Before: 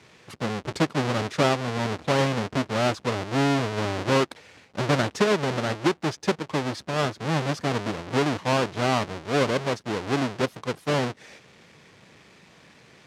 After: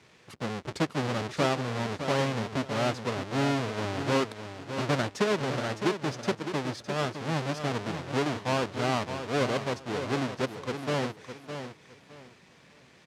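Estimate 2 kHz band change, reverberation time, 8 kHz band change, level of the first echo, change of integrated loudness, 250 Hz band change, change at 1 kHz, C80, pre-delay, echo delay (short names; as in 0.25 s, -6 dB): -4.5 dB, none, -4.5 dB, -9.0 dB, -4.5 dB, -4.5 dB, -4.5 dB, none, none, 0.61 s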